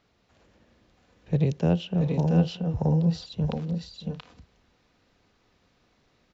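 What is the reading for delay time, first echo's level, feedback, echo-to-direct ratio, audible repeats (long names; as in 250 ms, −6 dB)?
627 ms, −18.5 dB, repeats not evenly spaced, −2.0 dB, 3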